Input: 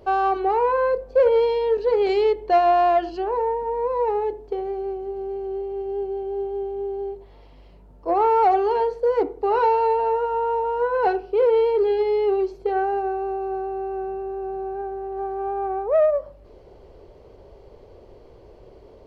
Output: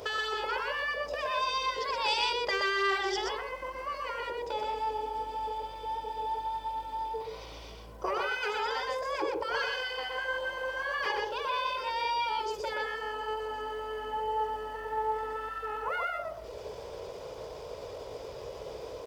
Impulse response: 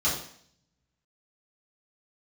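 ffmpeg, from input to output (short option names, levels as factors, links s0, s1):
-filter_complex "[0:a]acompressor=threshold=0.0447:ratio=3,aecho=1:1:2.3:0.33,asetrate=49501,aresample=44100,atempo=0.890899,highpass=f=190:p=1,highshelf=f=2100:g=11.5,afftfilt=real='re*lt(hypot(re,im),0.224)':imag='im*lt(hypot(re,im),0.224)':win_size=1024:overlap=0.75,asplit=2[s0][s1];[s1]aecho=0:1:124:0.668[s2];[s0][s2]amix=inputs=2:normalize=0,volume=1.58"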